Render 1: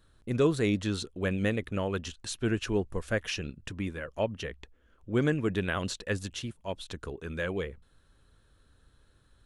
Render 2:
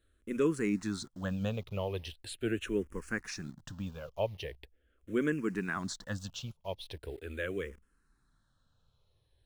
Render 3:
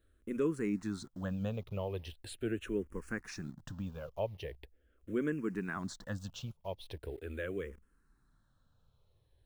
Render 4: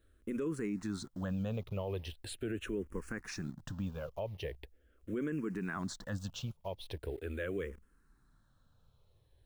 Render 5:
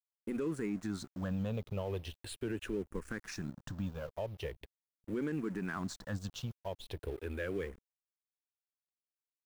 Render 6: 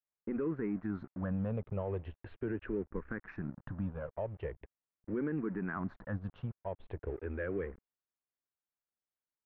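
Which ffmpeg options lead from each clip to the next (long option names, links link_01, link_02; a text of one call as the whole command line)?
ffmpeg -i in.wav -filter_complex "[0:a]asplit=2[link_01][link_02];[link_02]acrusher=bits=7:mix=0:aa=0.000001,volume=-5dB[link_03];[link_01][link_03]amix=inputs=2:normalize=0,asplit=2[link_04][link_05];[link_05]afreqshift=-0.41[link_06];[link_04][link_06]amix=inputs=2:normalize=1,volume=-6dB" out.wav
ffmpeg -i in.wav -filter_complex "[0:a]equalizer=frequency=5000:width=0.35:gain=-6.5,asplit=2[link_01][link_02];[link_02]acompressor=threshold=-42dB:ratio=6,volume=0.5dB[link_03];[link_01][link_03]amix=inputs=2:normalize=0,volume=-4.5dB" out.wav
ffmpeg -i in.wav -af "alimiter=level_in=7dB:limit=-24dB:level=0:latency=1:release=28,volume=-7dB,volume=2.5dB" out.wav
ffmpeg -i in.wav -af "aeval=exprs='sgn(val(0))*max(abs(val(0))-0.00178,0)':channel_layout=same,volume=1dB" out.wav
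ffmpeg -i in.wav -af "lowpass=frequency=1900:width=0.5412,lowpass=frequency=1900:width=1.3066,volume=1dB" out.wav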